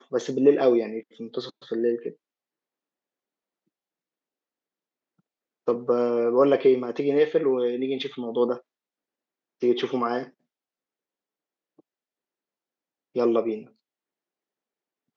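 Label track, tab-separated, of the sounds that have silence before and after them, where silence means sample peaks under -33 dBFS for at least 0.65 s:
5.680000	8.570000	sound
9.630000	10.240000	sound
13.160000	13.600000	sound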